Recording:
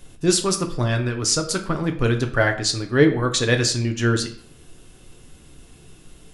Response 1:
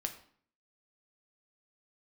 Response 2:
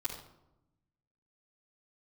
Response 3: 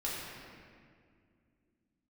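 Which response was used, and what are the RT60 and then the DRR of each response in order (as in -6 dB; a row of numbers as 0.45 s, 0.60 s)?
1; 0.55 s, 0.90 s, 2.2 s; 4.5 dB, -10.0 dB, -7.0 dB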